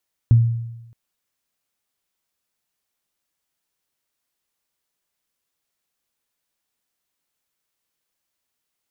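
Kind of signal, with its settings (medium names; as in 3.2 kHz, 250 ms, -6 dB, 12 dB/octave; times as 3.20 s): additive tone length 0.62 s, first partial 116 Hz, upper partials -16.5 dB, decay 0.97 s, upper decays 0.23 s, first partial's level -7 dB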